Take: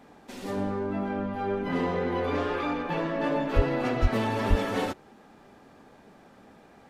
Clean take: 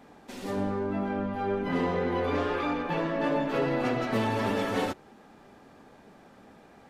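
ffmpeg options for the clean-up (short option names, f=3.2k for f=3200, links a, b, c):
-filter_complex "[0:a]asplit=3[a][b][c];[a]afade=t=out:st=3.55:d=0.02[d];[b]highpass=f=140:w=0.5412,highpass=f=140:w=1.3066,afade=t=in:st=3.55:d=0.02,afade=t=out:st=3.67:d=0.02[e];[c]afade=t=in:st=3.67:d=0.02[f];[d][e][f]amix=inputs=3:normalize=0,asplit=3[g][h][i];[g]afade=t=out:st=4.01:d=0.02[j];[h]highpass=f=140:w=0.5412,highpass=f=140:w=1.3066,afade=t=in:st=4.01:d=0.02,afade=t=out:st=4.13:d=0.02[k];[i]afade=t=in:st=4.13:d=0.02[l];[j][k][l]amix=inputs=3:normalize=0,asplit=3[m][n][o];[m]afade=t=out:st=4.49:d=0.02[p];[n]highpass=f=140:w=0.5412,highpass=f=140:w=1.3066,afade=t=in:st=4.49:d=0.02,afade=t=out:st=4.61:d=0.02[q];[o]afade=t=in:st=4.61:d=0.02[r];[p][q][r]amix=inputs=3:normalize=0"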